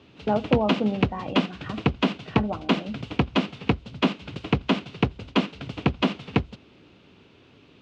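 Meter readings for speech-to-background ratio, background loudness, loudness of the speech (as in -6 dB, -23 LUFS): -3.0 dB, -27.0 LUFS, -30.0 LUFS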